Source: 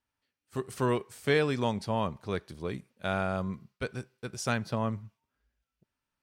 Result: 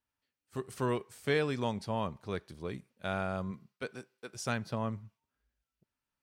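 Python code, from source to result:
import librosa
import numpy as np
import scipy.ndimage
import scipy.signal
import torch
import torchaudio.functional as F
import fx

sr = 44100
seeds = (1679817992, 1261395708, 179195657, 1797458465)

y = fx.highpass(x, sr, hz=fx.line((3.51, 110.0), (4.34, 360.0)), slope=12, at=(3.51, 4.34), fade=0.02)
y = y * librosa.db_to_amplitude(-4.0)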